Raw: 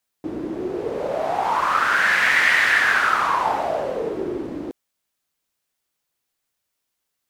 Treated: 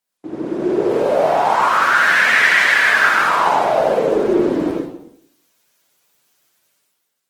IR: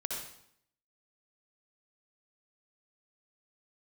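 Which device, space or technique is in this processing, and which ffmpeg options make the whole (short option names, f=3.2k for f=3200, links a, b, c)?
far-field microphone of a smart speaker: -filter_complex "[0:a]asettb=1/sr,asplit=3[a][b][c];[a]atrim=end=3.054[d];[b]atrim=start=3.05:end=3.76,asetpts=PTS-STARTPTS,afade=t=in:d=0.004:c=qsin,afade=t=out:st=0.706:d=0.004:c=qsin,equalizer=f=1.1k:t=o:w=0.54:g=-3.5[e];[c]atrim=start=3.756[f];[d][e]acrossfade=d=0.004:c1=hsin:c2=qsin[g];[g][f]acrossfade=d=0.004:c1=qsin:c2=hsin[h];[1:a]atrim=start_sample=2205[i];[h][i]afir=irnorm=-1:irlink=0,highpass=f=120:w=0.5412,highpass=f=120:w=1.3066,dynaudnorm=f=110:g=11:m=13.5dB" -ar 48000 -c:a libopus -b:a 16k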